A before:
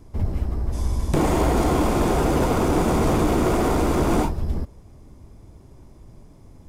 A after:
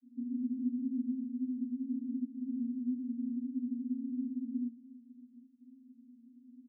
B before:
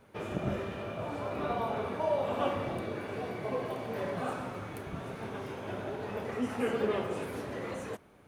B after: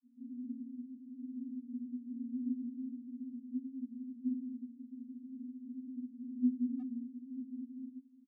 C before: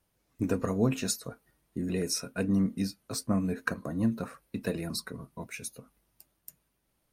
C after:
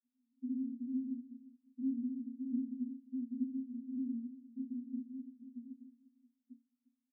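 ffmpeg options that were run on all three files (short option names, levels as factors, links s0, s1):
-filter_complex "[0:a]asplit=2[s0][s1];[s1]asoftclip=type=tanh:threshold=0.0631,volume=0.473[s2];[s0][s2]amix=inputs=2:normalize=0,acrusher=samples=42:mix=1:aa=0.000001,aresample=8000,aeval=exprs='(mod(11.2*val(0)+1,2)-1)/11.2':c=same,aresample=44100,asuperpass=centerf=250:order=12:qfactor=6.6,asplit=2[s3][s4];[s4]adelay=350,highpass=300,lowpass=3400,asoftclip=type=hard:threshold=0.0237,volume=0.224[s5];[s3][s5]amix=inputs=2:normalize=0,volume=1.33"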